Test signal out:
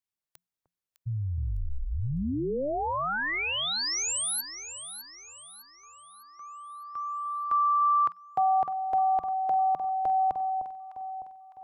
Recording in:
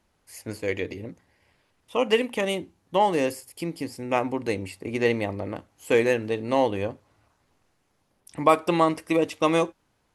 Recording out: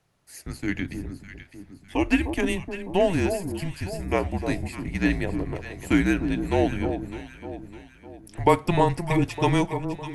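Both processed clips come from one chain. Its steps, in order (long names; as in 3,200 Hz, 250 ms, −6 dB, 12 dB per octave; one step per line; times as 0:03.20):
frequency shifter −180 Hz
delay that swaps between a low-pass and a high-pass 303 ms, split 1,000 Hz, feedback 65%, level −7.5 dB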